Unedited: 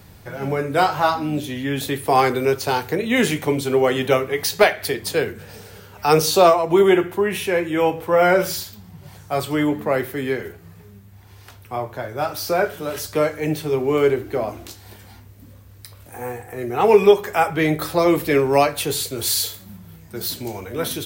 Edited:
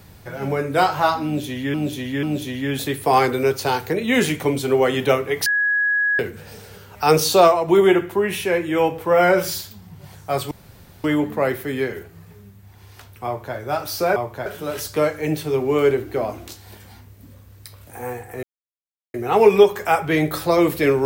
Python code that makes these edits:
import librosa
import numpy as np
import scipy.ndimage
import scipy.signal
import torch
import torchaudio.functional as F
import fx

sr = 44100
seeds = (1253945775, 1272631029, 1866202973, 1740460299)

y = fx.edit(x, sr, fx.repeat(start_s=1.25, length_s=0.49, count=3),
    fx.bleep(start_s=4.48, length_s=0.73, hz=1670.0, db=-16.0),
    fx.insert_room_tone(at_s=9.53, length_s=0.53),
    fx.duplicate(start_s=11.75, length_s=0.3, to_s=12.65),
    fx.insert_silence(at_s=16.62, length_s=0.71), tone=tone)